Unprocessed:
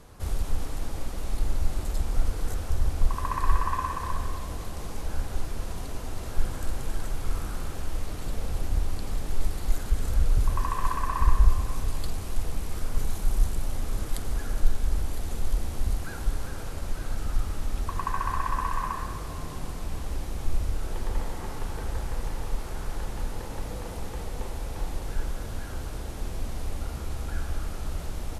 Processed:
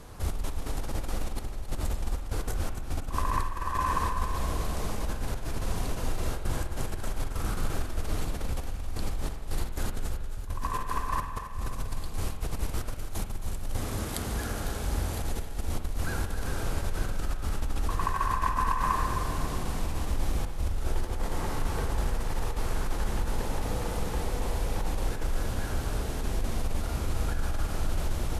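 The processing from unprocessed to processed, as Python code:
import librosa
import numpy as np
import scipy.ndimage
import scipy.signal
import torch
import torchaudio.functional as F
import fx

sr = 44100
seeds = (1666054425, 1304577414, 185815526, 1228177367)

y = fx.highpass(x, sr, hz=74.0, slope=12, at=(13.76, 15.21))
y = fx.over_compress(y, sr, threshold_db=-29.0, ratio=-1.0)
y = fx.echo_thinned(y, sr, ms=269, feedback_pct=45, hz=420.0, wet_db=-11)
y = fx.rev_spring(y, sr, rt60_s=1.5, pass_ms=(48,), chirp_ms=35, drr_db=7.0)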